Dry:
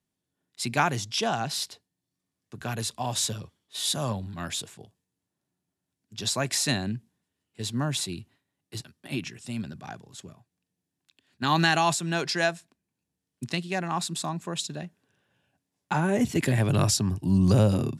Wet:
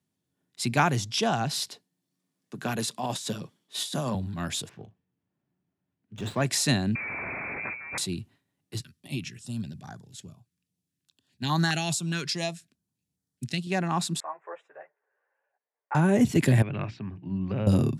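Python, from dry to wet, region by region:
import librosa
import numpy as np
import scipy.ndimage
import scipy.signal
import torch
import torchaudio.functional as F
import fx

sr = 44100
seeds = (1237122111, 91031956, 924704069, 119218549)

y = fx.chain(x, sr, fx.highpass(hz=150.0, slope=24),
    fx.over_compress(threshold_db=-31.0, ratio=-0.5), at=(1.68, 4.15))
y = fx.chain(y, sr, fx.lowpass(hz=3100.0, slope=24),
    fx.doubler(ms=38.0, db=-13.5),
    fx.running_max(window=5), at=(4.69, 6.42))
y = fx.chain(y, sr, fx.delta_mod(bps=16000, step_db=-31.0),
    fx.over_compress(threshold_db=-35.0, ratio=-1.0),
    fx.freq_invert(carrier_hz=2500), at=(6.95, 7.98))
y = fx.chain(y, sr, fx.peak_eq(hz=440.0, db=-7.5, octaves=2.6),
    fx.filter_held_notch(hz=4.8, low_hz=750.0, high_hz=2600.0), at=(8.79, 13.67))
y = fx.chain(y, sr, fx.ellip_bandpass(low_hz=470.0, high_hz=2000.0, order=3, stop_db=40),
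    fx.ensemble(), at=(14.2, 15.95))
y = fx.chain(y, sr, fx.ladder_lowpass(hz=2600.0, resonance_pct=60),
    fx.low_shelf(hz=66.0, db=-12.0),
    fx.hum_notches(base_hz=60, count=6), at=(16.62, 17.67))
y = scipy.signal.sosfilt(scipy.signal.butter(2, 96.0, 'highpass', fs=sr, output='sos'), y)
y = fx.low_shelf(y, sr, hz=250.0, db=7.0)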